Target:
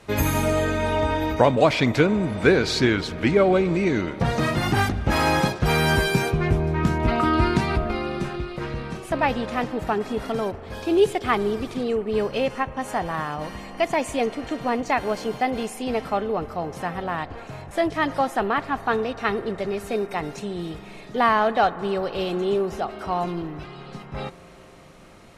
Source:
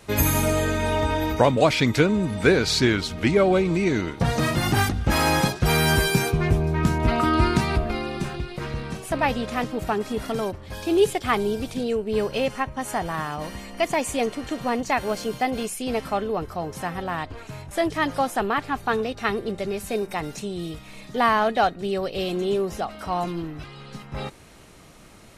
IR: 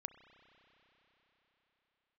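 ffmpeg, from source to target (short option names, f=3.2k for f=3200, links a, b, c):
-filter_complex "[0:a]aemphasis=mode=reproduction:type=cd,asplit=2[a][b];[1:a]atrim=start_sample=2205,asetrate=34398,aresample=44100,lowshelf=f=140:g=-10[c];[b][c]afir=irnorm=-1:irlink=0,volume=0.5dB[d];[a][d]amix=inputs=2:normalize=0,volume=-3.5dB"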